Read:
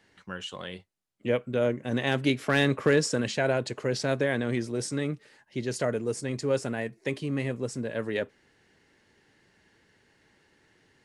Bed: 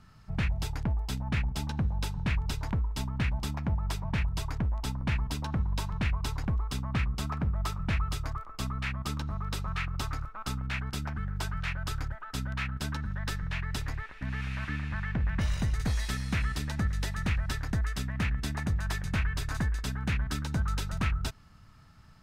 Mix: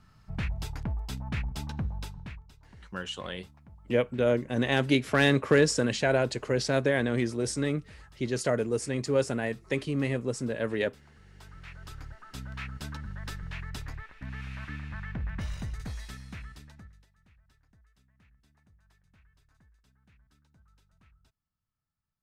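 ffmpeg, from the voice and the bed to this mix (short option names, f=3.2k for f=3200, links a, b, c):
-filter_complex "[0:a]adelay=2650,volume=1dB[a];[1:a]volume=15dB,afade=t=out:st=1.82:d=0.63:silence=0.1,afade=t=in:st=11.24:d=1.44:silence=0.125893,afade=t=out:st=15.26:d=1.8:silence=0.0354813[b];[a][b]amix=inputs=2:normalize=0"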